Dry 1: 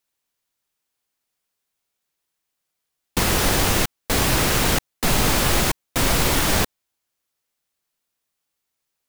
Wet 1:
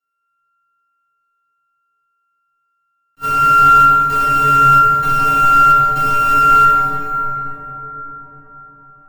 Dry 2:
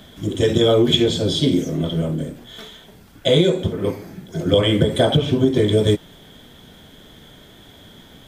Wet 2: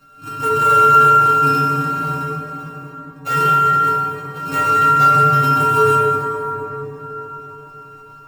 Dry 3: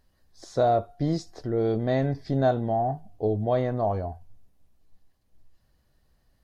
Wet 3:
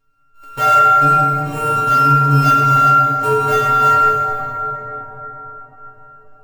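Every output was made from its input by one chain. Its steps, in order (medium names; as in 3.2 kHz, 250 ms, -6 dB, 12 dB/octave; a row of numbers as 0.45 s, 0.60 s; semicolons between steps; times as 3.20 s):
sorted samples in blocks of 32 samples; inharmonic resonator 140 Hz, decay 0.43 s, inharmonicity 0.008; plate-style reverb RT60 5 s, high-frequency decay 0.35×, DRR -3.5 dB; attacks held to a fixed rise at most 520 dB/s; peak normalisation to -2 dBFS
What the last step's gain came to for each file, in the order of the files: +6.5 dB, +3.0 dB, +12.0 dB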